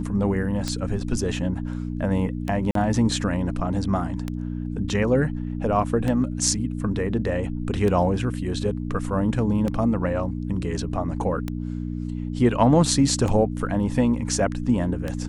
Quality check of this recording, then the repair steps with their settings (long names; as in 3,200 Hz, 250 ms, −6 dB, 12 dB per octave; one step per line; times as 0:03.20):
mains hum 60 Hz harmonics 5 −29 dBFS
scratch tick 33 1/3 rpm −14 dBFS
0:02.71–0:02.75: drop-out 43 ms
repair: click removal
hum removal 60 Hz, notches 5
repair the gap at 0:02.71, 43 ms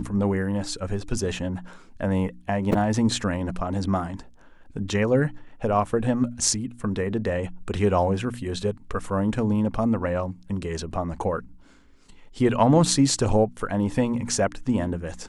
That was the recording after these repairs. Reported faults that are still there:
none of them is left